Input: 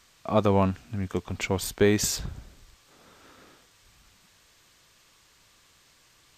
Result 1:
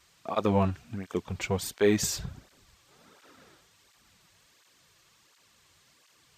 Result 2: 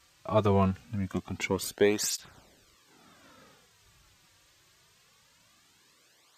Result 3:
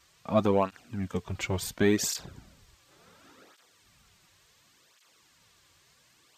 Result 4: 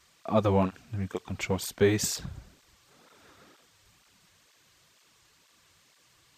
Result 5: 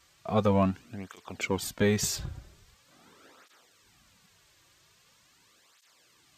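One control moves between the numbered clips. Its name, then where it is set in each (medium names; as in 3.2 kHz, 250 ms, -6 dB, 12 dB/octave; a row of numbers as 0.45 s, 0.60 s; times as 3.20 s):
cancelling through-zero flanger, nulls at: 1.4 Hz, 0.23 Hz, 0.7 Hz, 2.1 Hz, 0.43 Hz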